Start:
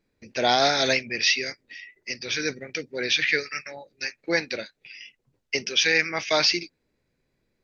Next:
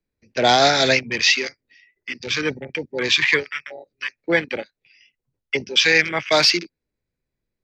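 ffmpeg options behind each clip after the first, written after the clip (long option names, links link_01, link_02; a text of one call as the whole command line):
ffmpeg -i in.wav -filter_complex "[0:a]afwtdn=0.0251,acrossover=split=110|390|3200[link_01][link_02][link_03][link_04];[link_01]acontrast=82[link_05];[link_05][link_02][link_03][link_04]amix=inputs=4:normalize=0,volume=5.5dB" out.wav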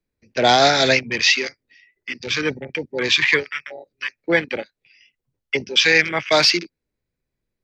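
ffmpeg -i in.wav -af "highshelf=frequency=8200:gain=-3.5,volume=1dB" out.wav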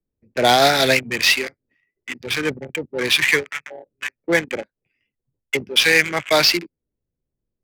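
ffmpeg -i in.wav -af "adynamicsmooth=sensitivity=2.5:basefreq=830" out.wav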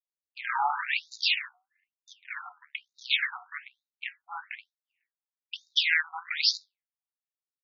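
ffmpeg -i in.wav -af "flanger=delay=9.9:depth=8.7:regen=-73:speed=0.46:shape=sinusoidal,aeval=exprs='val(0)*sin(2*PI*160*n/s)':channel_layout=same,afftfilt=real='re*between(b*sr/1024,990*pow(5200/990,0.5+0.5*sin(2*PI*1.1*pts/sr))/1.41,990*pow(5200/990,0.5+0.5*sin(2*PI*1.1*pts/sr))*1.41)':imag='im*between(b*sr/1024,990*pow(5200/990,0.5+0.5*sin(2*PI*1.1*pts/sr))/1.41,990*pow(5200/990,0.5+0.5*sin(2*PI*1.1*pts/sr))*1.41)':win_size=1024:overlap=0.75" out.wav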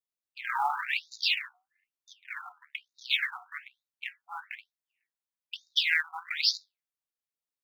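ffmpeg -i in.wav -af "acrusher=bits=8:mode=log:mix=0:aa=0.000001,volume=-1.5dB" out.wav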